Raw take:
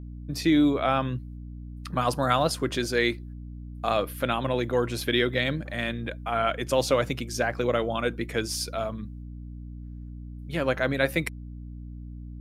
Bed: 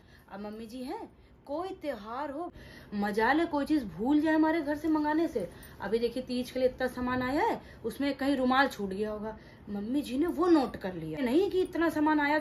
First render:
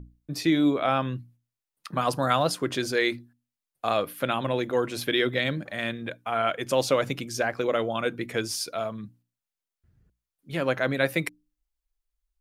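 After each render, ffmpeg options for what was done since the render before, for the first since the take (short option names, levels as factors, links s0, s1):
-af "bandreject=f=60:t=h:w=6,bandreject=f=120:t=h:w=6,bandreject=f=180:t=h:w=6,bandreject=f=240:t=h:w=6,bandreject=f=300:t=h:w=6"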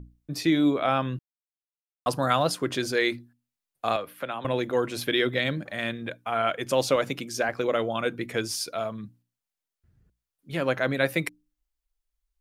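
-filter_complex "[0:a]asettb=1/sr,asplit=3[s0][s1][s2];[s0]atrim=end=3.964[s3];[s1]atrim=start=3.96:end=4.45,asetpts=PTS-STARTPTS,afade=t=in:d=0.004:c=qsin,afade=t=out:st=0.486:d=0.004:c=qsin,acrossover=split=200|430|1200|3000[s4][s5][s6][s7][s8];[s4]acompressor=threshold=0.00224:ratio=3[s9];[s5]acompressor=threshold=0.00316:ratio=3[s10];[s6]acompressor=threshold=0.0251:ratio=3[s11];[s7]acompressor=threshold=0.00891:ratio=3[s12];[s8]acompressor=threshold=0.00251:ratio=3[s13];[s9][s10][s11][s12][s13]amix=inputs=5:normalize=0[s14];[s2]atrim=start=4.446[s15];[s3][s14]acrossfade=d=0.004:c1=hsin:c2=qsin[s16];[s16][s15]acrossfade=d=0.004:c1=qsin:c2=hsin,asettb=1/sr,asplit=3[s17][s18][s19];[s17]atrim=end=6.964[s20];[s18]atrim=start=6.96:end=7.49,asetpts=PTS-STARTPTS,afade=t=in:d=0.004:c=qsin,afade=t=out:st=0.526:d=0.004:c=qsin,highpass=150[s21];[s19]atrim=start=7.486[s22];[s20][s21]acrossfade=d=0.004:c1=hsin:c2=qsin[s23];[s23][s22]acrossfade=d=0.004:c1=qsin:c2=hsin,asplit=3[s24][s25][s26];[s24]atrim=end=1.19,asetpts=PTS-STARTPTS,afade=t=out:st=1.186:d=0.004:c=hsin[s27];[s25]atrim=start=1.19:end=2.06,asetpts=PTS-STARTPTS,volume=0[s28];[s26]atrim=start=2.06,asetpts=PTS-STARTPTS,afade=t=in:d=0.004:c=hsin[s29];[s27][s28][s29]concat=n=3:v=0:a=1"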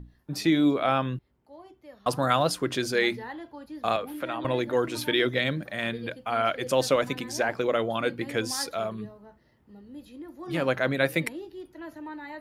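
-filter_complex "[1:a]volume=0.224[s0];[0:a][s0]amix=inputs=2:normalize=0"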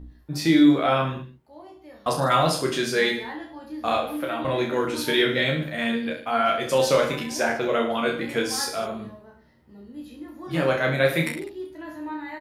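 -filter_complex "[0:a]asplit=2[s0][s1];[s1]adelay=13,volume=0.631[s2];[s0][s2]amix=inputs=2:normalize=0,aecho=1:1:30|64.5|104.2|149.8|202.3:0.631|0.398|0.251|0.158|0.1"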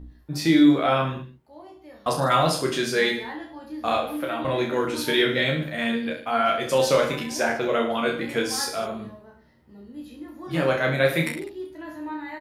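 -af anull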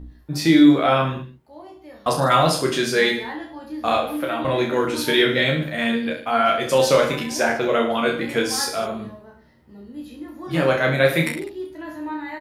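-af "volume=1.5"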